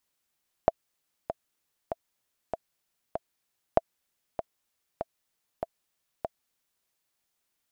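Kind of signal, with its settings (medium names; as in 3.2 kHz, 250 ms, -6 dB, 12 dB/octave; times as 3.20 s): metronome 97 bpm, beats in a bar 5, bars 2, 663 Hz, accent 11 dB -6 dBFS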